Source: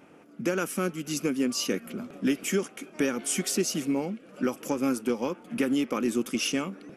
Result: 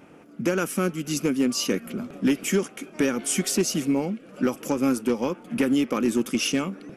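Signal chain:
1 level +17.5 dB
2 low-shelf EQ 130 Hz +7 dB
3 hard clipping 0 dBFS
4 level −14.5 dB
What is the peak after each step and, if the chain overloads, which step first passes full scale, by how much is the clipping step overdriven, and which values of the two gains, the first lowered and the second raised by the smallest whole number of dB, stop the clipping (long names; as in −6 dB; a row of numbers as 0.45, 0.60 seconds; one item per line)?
+2.5, +3.5, 0.0, −14.5 dBFS
step 1, 3.5 dB
step 1 +13.5 dB, step 4 −10.5 dB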